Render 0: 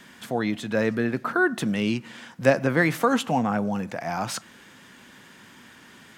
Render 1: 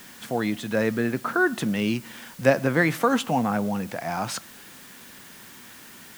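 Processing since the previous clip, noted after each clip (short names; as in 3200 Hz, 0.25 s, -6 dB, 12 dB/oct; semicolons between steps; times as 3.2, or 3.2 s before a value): requantised 8-bit, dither triangular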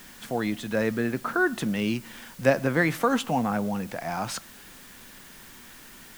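added noise brown -56 dBFS; gain -2 dB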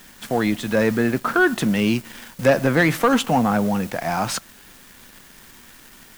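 sample leveller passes 2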